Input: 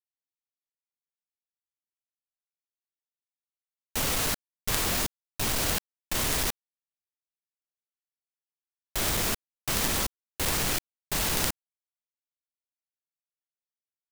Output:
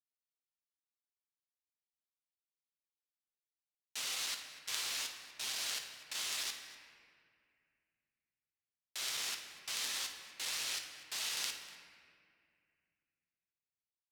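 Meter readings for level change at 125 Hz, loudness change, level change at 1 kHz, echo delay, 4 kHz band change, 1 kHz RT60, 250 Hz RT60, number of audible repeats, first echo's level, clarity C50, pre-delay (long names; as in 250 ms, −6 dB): below −30 dB, −10.5 dB, −15.5 dB, 56 ms, −5.5 dB, 2.0 s, 2.9 s, 2, −11.0 dB, 5.0 dB, 8 ms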